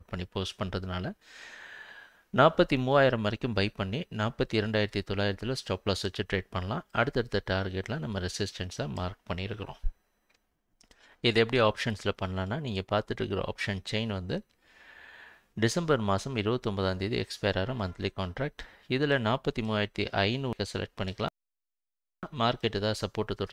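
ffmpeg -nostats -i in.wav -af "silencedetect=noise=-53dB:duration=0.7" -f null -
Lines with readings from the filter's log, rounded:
silence_start: 21.28
silence_end: 22.23 | silence_duration: 0.94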